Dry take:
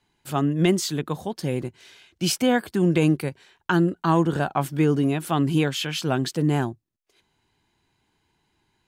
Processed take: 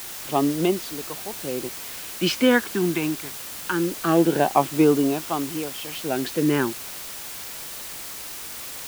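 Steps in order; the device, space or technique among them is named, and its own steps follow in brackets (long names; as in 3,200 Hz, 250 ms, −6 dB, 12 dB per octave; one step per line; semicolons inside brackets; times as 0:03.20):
shortwave radio (band-pass filter 300–2,900 Hz; amplitude tremolo 0.44 Hz, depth 78%; auto-filter notch sine 0.24 Hz 520–2,000 Hz; white noise bed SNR 11 dB)
level +8 dB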